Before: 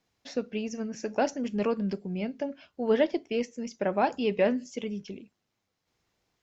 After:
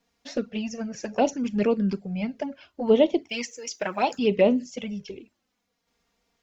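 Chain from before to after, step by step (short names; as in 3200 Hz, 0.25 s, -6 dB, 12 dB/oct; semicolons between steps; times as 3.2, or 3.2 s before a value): 3.29–4.19 tilt +3.5 dB/oct; envelope flanger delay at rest 4.3 ms, full sweep at -22.5 dBFS; gain +6.5 dB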